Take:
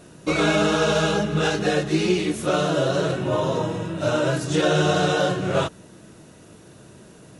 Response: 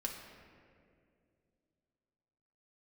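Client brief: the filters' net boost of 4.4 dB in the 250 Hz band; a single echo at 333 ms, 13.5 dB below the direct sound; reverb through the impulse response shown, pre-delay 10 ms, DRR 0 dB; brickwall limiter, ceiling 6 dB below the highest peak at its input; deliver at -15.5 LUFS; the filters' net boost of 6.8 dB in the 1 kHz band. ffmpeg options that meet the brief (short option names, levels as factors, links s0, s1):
-filter_complex "[0:a]equalizer=f=250:t=o:g=6,equalizer=f=1000:t=o:g=9,alimiter=limit=0.299:level=0:latency=1,aecho=1:1:333:0.211,asplit=2[s0][s1];[1:a]atrim=start_sample=2205,adelay=10[s2];[s1][s2]afir=irnorm=-1:irlink=0,volume=0.944[s3];[s0][s3]amix=inputs=2:normalize=0,volume=1.19"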